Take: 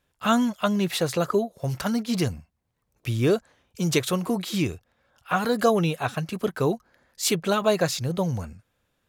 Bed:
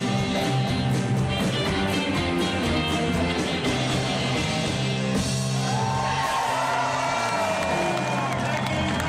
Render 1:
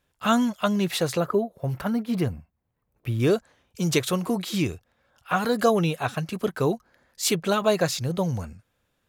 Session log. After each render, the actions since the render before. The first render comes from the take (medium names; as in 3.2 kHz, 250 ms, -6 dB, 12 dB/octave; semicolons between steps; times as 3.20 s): 1.20–3.20 s: peaking EQ 6.2 kHz -14.5 dB 1.8 oct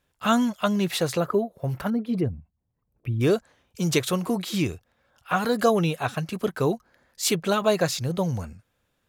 1.90–3.21 s: resonances exaggerated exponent 1.5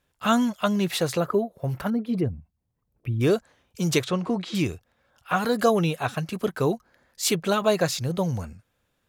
4.04–4.55 s: distance through air 120 m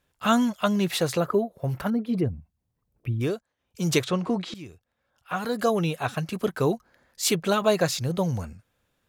3.11–3.89 s: dip -19.5 dB, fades 0.31 s; 4.54–6.25 s: fade in, from -19.5 dB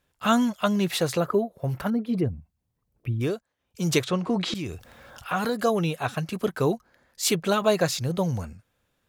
4.30–5.50 s: level flattener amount 50%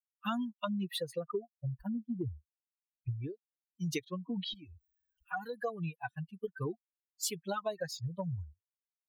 expander on every frequency bin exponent 3; compression 5:1, threshold -33 dBFS, peak gain reduction 12.5 dB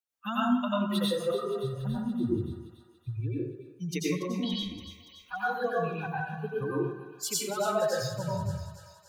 thinning echo 285 ms, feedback 64%, high-pass 710 Hz, level -12.5 dB; plate-style reverb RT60 0.78 s, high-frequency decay 0.5×, pre-delay 80 ms, DRR -7 dB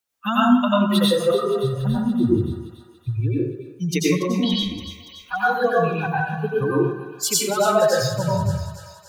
trim +10.5 dB